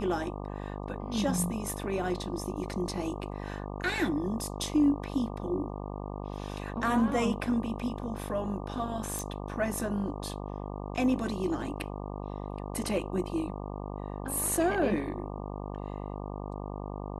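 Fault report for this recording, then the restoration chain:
mains buzz 50 Hz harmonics 24 −38 dBFS
0:09.19: click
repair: click removal
hum removal 50 Hz, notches 24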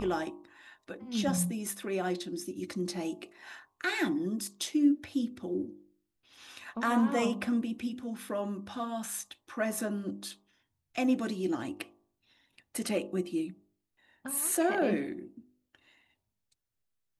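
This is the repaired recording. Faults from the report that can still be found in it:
none of them is left

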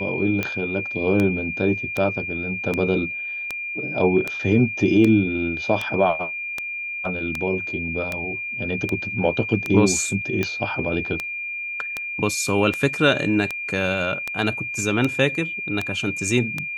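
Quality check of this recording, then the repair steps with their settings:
scratch tick 78 rpm −10 dBFS
whistle 2,400 Hz −27 dBFS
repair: click removal
notch filter 2,400 Hz, Q 30

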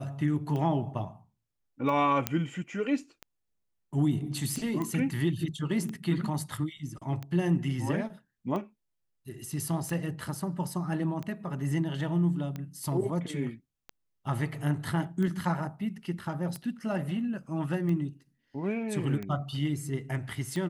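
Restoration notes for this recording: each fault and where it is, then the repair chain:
scratch tick 45 rpm −24 dBFS
0:02.27: click −10 dBFS
0:04.82: click −21 dBFS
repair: click removal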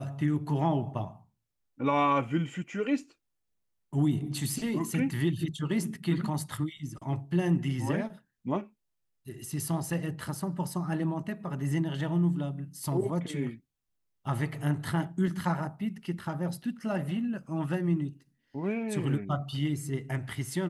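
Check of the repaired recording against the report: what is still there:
none of them is left

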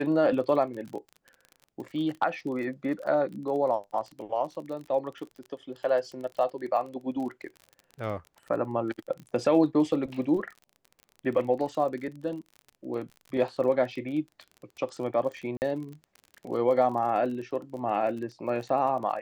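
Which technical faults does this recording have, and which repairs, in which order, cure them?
surface crackle 34 per second −37 dBFS
0:15.57–0:15.62: drop-out 49 ms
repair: click removal
repair the gap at 0:15.57, 49 ms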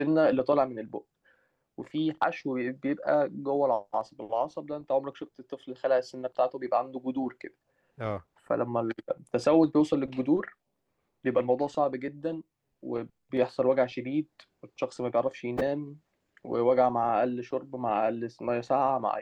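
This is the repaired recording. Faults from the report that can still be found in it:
none of them is left

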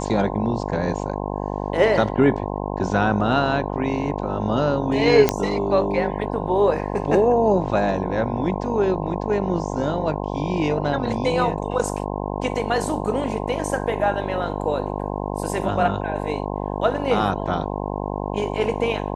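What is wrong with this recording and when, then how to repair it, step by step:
mains buzz 50 Hz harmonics 21 −27 dBFS
0:05.29: click −2 dBFS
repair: click removal
hum removal 50 Hz, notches 21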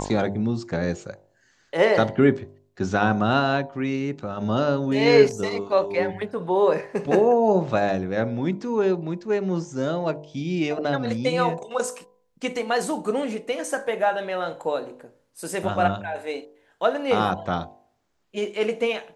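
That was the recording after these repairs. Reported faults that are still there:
none of them is left

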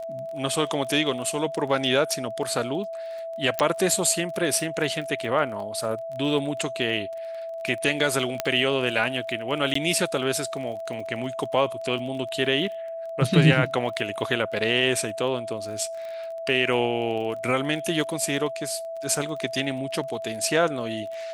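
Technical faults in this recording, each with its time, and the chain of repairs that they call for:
surface crackle 23 per second −34 dBFS
whistle 660 Hz −31 dBFS
0:03.59: click −7 dBFS
0:08.40: click −8 dBFS
0:09.74–0:09.75: drop-out 14 ms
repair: click removal
notch filter 660 Hz, Q 30
repair the gap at 0:09.74, 14 ms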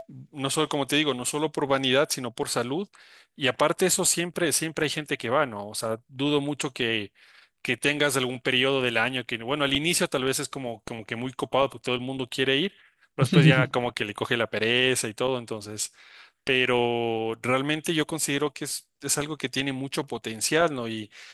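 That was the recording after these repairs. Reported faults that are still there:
none of them is left

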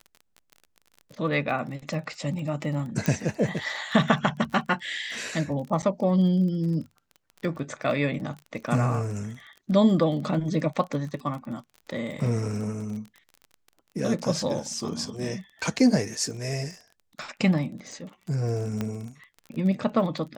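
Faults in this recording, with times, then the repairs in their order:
surface crackle 28 per second −35 dBFS
0:03.06: click −11 dBFS
0:05.82–0:05.83: drop-out 8.4 ms
0:18.81: click −16 dBFS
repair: click removal
repair the gap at 0:05.82, 8.4 ms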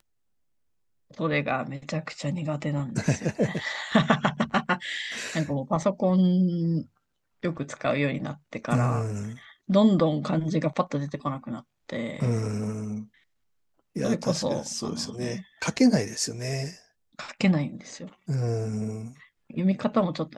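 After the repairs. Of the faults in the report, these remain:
none of them is left

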